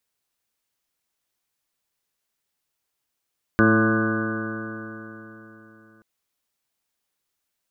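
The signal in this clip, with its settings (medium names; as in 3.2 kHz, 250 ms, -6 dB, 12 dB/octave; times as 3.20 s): stretched partials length 2.43 s, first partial 109 Hz, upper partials 5/4.5/-2.5/-4/-10.5/-18.5/-18.5/-8/-1.5/-13.5/3/-6.5 dB, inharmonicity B 0.0021, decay 3.69 s, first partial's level -22.5 dB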